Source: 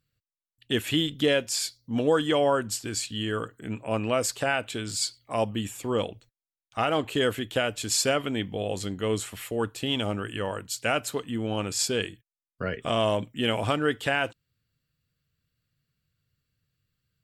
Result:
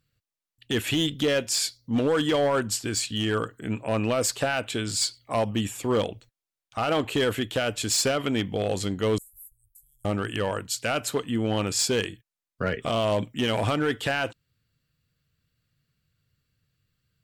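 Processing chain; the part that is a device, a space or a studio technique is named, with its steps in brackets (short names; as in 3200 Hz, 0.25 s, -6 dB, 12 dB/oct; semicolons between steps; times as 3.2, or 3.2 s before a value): 9.18–10.05 inverse Chebyshev band-stop 220–2700 Hz, stop band 80 dB; high shelf 10000 Hz -3 dB; limiter into clipper (limiter -17 dBFS, peak gain reduction 5 dB; hard clip -22 dBFS, distortion -17 dB); gain +4 dB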